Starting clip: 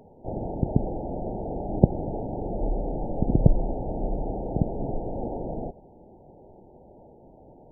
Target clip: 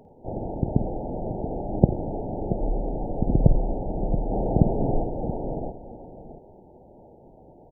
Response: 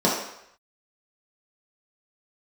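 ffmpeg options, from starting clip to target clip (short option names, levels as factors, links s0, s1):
-filter_complex "[0:a]asettb=1/sr,asplit=3[s0][s1][s2];[s0]atrim=end=4.314[s3];[s1]atrim=start=4.31:end=5.04,asetpts=PTS-STARTPTS,afade=t=in:d=0.004:c=qsin,afade=t=out:st=0.726:d=0.004:c=qsin,acontrast=41[s4];[s2]atrim=start=5.036[s5];[s3][s4]acrossfade=d=0.004:c1=hsin:c2=qsin[s6];[s6][s5]acrossfade=d=0.004:c1=qsin:c2=hsin,asplit=2[s7][s8];[s8]aecho=0:1:51|88|679:0.237|0.133|0.282[s9];[s7][s9]amix=inputs=2:normalize=0"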